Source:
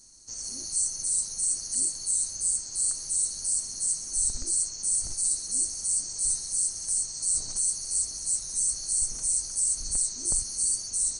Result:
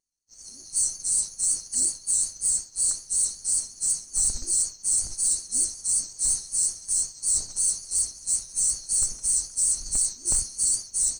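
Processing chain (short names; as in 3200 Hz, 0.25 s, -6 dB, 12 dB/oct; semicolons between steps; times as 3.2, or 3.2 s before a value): vibrato 5.4 Hz 43 cents; sample leveller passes 1; expander -23 dBFS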